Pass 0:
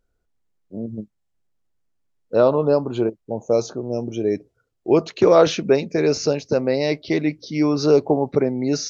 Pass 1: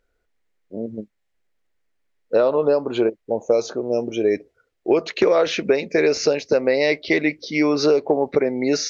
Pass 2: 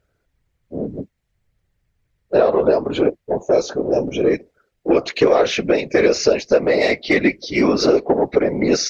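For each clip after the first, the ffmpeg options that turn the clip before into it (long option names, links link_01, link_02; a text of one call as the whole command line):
ffmpeg -i in.wav -af "equalizer=frequency=125:width_type=o:width=1:gain=-8,equalizer=frequency=500:width_type=o:width=1:gain=6,equalizer=frequency=2000:width_type=o:width=1:gain=11,equalizer=frequency=4000:width_type=o:width=1:gain=3,acompressor=threshold=-13dB:ratio=12" out.wav
ffmpeg -i in.wav -af "acontrast=46,afftfilt=real='hypot(re,im)*cos(2*PI*random(0))':imag='hypot(re,im)*sin(2*PI*random(1))':win_size=512:overlap=0.75,volume=3.5dB" out.wav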